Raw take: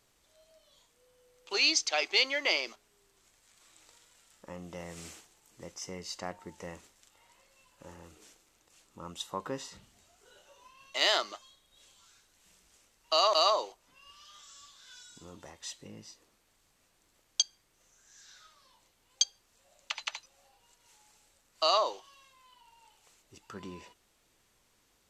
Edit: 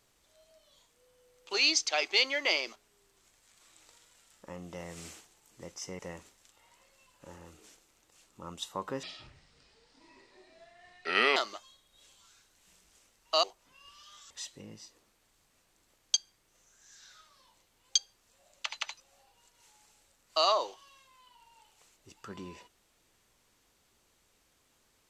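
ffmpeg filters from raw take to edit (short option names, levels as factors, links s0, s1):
-filter_complex "[0:a]asplit=6[s0][s1][s2][s3][s4][s5];[s0]atrim=end=5.992[s6];[s1]atrim=start=6.568:end=9.614[s7];[s2]atrim=start=9.61:end=11.15,asetpts=PTS-STARTPTS,asetrate=29106,aresample=44100[s8];[s3]atrim=start=11.146:end=13.222[s9];[s4]atrim=start=13.648:end=14.522[s10];[s5]atrim=start=15.558[s11];[s6][s7]acrossfade=d=0.004:c1=hsin:c2=hsin[s12];[s12][s8]acrossfade=d=0.004:c1=hsin:c2=hsin[s13];[s13][s9]acrossfade=d=0.004:c1=hsin:c2=hsin[s14];[s14][s10]acrossfade=d=0.004:c1=hsin:c2=hsin[s15];[s15][s11]acrossfade=d=0.004:c1=hsin:c2=hsin"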